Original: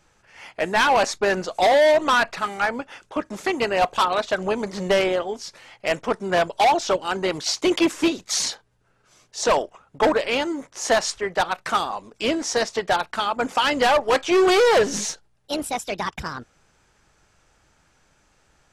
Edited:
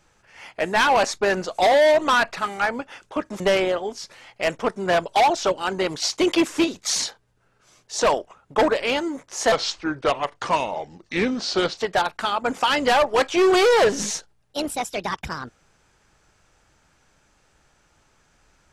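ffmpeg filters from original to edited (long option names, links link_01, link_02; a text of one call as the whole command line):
ffmpeg -i in.wav -filter_complex "[0:a]asplit=4[link_01][link_02][link_03][link_04];[link_01]atrim=end=3.402[link_05];[link_02]atrim=start=4.838:end=10.964[link_06];[link_03]atrim=start=10.96:end=12.72,asetpts=PTS-STARTPTS,asetrate=34398,aresample=44100[link_07];[link_04]atrim=start=12.716[link_08];[link_05][link_06]acrossfade=duration=0.004:curve1=hsin:curve2=hsin[link_09];[link_09][link_07]acrossfade=duration=0.004:curve1=hsin:curve2=hsin[link_10];[link_10][link_08]acrossfade=duration=0.004:curve1=hsin:curve2=hsin" out.wav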